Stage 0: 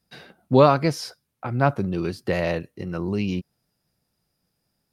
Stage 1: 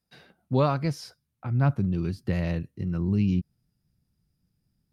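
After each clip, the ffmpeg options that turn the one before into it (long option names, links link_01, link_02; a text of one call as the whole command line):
ffmpeg -i in.wav -af "asubboost=boost=8:cutoff=220,volume=-8.5dB" out.wav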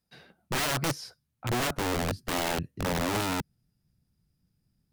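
ffmpeg -i in.wav -af "aeval=exprs='(mod(15*val(0)+1,2)-1)/15':channel_layout=same" out.wav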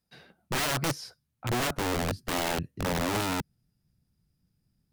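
ffmpeg -i in.wav -af anull out.wav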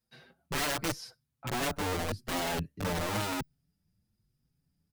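ffmpeg -i in.wav -filter_complex "[0:a]asplit=2[link_01][link_02];[link_02]adelay=6,afreqshift=0.95[link_03];[link_01][link_03]amix=inputs=2:normalize=1" out.wav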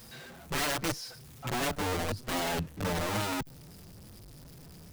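ffmpeg -i in.wav -af "aeval=exprs='val(0)+0.5*0.00631*sgn(val(0))':channel_layout=same" out.wav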